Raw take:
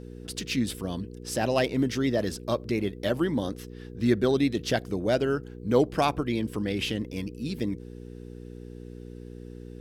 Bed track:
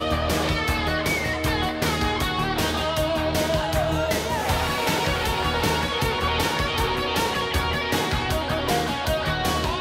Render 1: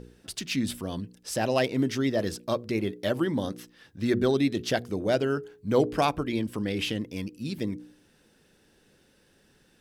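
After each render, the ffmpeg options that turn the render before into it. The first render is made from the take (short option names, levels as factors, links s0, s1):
-af "bandreject=f=60:t=h:w=4,bandreject=f=120:t=h:w=4,bandreject=f=180:t=h:w=4,bandreject=f=240:t=h:w=4,bandreject=f=300:t=h:w=4,bandreject=f=360:t=h:w=4,bandreject=f=420:t=h:w=4,bandreject=f=480:t=h:w=4"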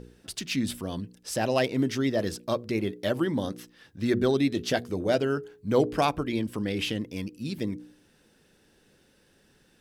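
-filter_complex "[0:a]asettb=1/sr,asplit=3[s0][s1][s2];[s0]atrim=end=4.514[s3];[s1]atrim=start=4.51:end=5.18,asetpts=PTS-STARTPTS,afade=t=in:d=0.004:c=qsin,afade=t=out:st=0.666:d=0.004:c=qsin,asplit=2[s4][s5];[s5]adelay=12,volume=0.316[s6];[s4][s6]amix=inputs=2:normalize=0,atrim=end_sample=29547[s7];[s2]atrim=start=5.176[s8];[s3][s7]acrossfade=d=0.004:c1=hsin:c2=qsin[s9];[s9][s8]acrossfade=d=0.004:c1=qsin:c2=hsin"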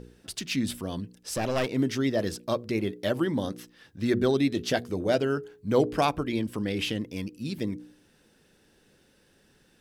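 -filter_complex "[0:a]asettb=1/sr,asplit=3[s0][s1][s2];[s0]atrim=end=1.304[s3];[s1]atrim=start=1.3:end=1.7,asetpts=PTS-STARTPTS,afade=t=in:d=0.004:c=qsin,afade=t=out:st=0.396:d=0.004:c=qsin,aeval=exprs='clip(val(0),-1,0.0398)':c=same[s4];[s2]atrim=start=1.696[s5];[s3][s4]acrossfade=d=0.004:c1=hsin:c2=qsin[s6];[s6][s5]acrossfade=d=0.004:c1=qsin:c2=hsin"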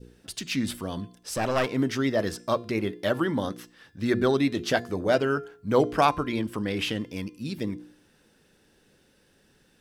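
-af "bandreject=f=345.9:t=h:w=4,bandreject=f=691.8:t=h:w=4,bandreject=f=1037.7:t=h:w=4,bandreject=f=1383.6:t=h:w=4,bandreject=f=1729.5:t=h:w=4,bandreject=f=2075.4:t=h:w=4,bandreject=f=2421.3:t=h:w=4,bandreject=f=2767.2:t=h:w=4,bandreject=f=3113.1:t=h:w=4,bandreject=f=3459:t=h:w=4,bandreject=f=3804.9:t=h:w=4,bandreject=f=4150.8:t=h:w=4,bandreject=f=4496.7:t=h:w=4,bandreject=f=4842.6:t=h:w=4,bandreject=f=5188.5:t=h:w=4,bandreject=f=5534.4:t=h:w=4,bandreject=f=5880.3:t=h:w=4,bandreject=f=6226.2:t=h:w=4,bandreject=f=6572.1:t=h:w=4,bandreject=f=6918:t=h:w=4,bandreject=f=7263.9:t=h:w=4,bandreject=f=7609.8:t=h:w=4,bandreject=f=7955.7:t=h:w=4,bandreject=f=8301.6:t=h:w=4,bandreject=f=8647.5:t=h:w=4,bandreject=f=8993.4:t=h:w=4,bandreject=f=9339.3:t=h:w=4,bandreject=f=9685.2:t=h:w=4,adynamicequalizer=threshold=0.00708:dfrequency=1200:dqfactor=1:tfrequency=1200:tqfactor=1:attack=5:release=100:ratio=0.375:range=3.5:mode=boostabove:tftype=bell"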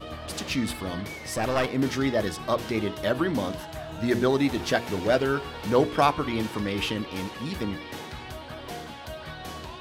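-filter_complex "[1:a]volume=0.188[s0];[0:a][s0]amix=inputs=2:normalize=0"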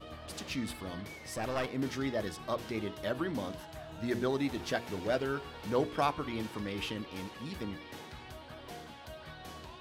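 -af "volume=0.355"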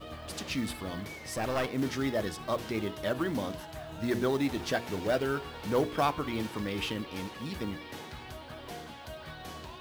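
-filter_complex "[0:a]asplit=2[s0][s1];[s1]volume=26.6,asoftclip=hard,volume=0.0376,volume=0.501[s2];[s0][s2]amix=inputs=2:normalize=0,acrusher=bits=6:mode=log:mix=0:aa=0.000001"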